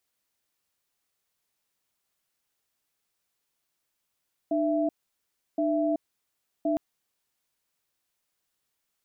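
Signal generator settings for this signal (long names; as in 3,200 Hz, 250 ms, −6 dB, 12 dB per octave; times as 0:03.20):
tone pair in a cadence 302 Hz, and 664 Hz, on 0.38 s, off 0.69 s, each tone −25.5 dBFS 2.26 s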